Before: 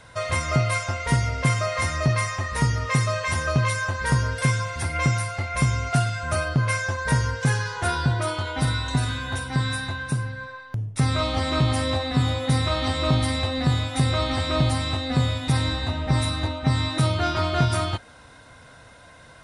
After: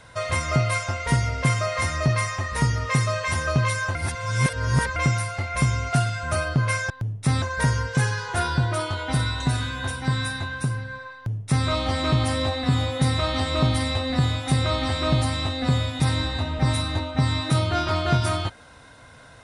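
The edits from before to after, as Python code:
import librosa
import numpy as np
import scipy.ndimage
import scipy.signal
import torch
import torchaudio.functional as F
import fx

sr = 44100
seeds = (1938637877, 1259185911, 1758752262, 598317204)

y = fx.edit(x, sr, fx.reverse_span(start_s=3.95, length_s=1.01),
    fx.duplicate(start_s=10.63, length_s=0.52, to_s=6.9), tone=tone)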